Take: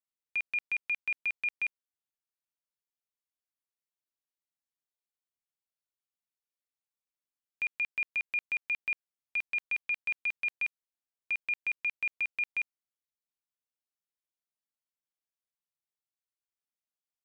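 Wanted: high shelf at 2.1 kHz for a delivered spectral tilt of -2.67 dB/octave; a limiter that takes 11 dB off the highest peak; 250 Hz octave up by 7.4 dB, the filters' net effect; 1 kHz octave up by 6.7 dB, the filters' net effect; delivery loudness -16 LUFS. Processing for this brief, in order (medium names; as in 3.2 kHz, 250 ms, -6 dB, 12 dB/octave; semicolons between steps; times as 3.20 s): peaking EQ 250 Hz +9 dB; peaking EQ 1 kHz +6.5 dB; treble shelf 2.1 kHz +6 dB; trim +22.5 dB; peak limiter -9.5 dBFS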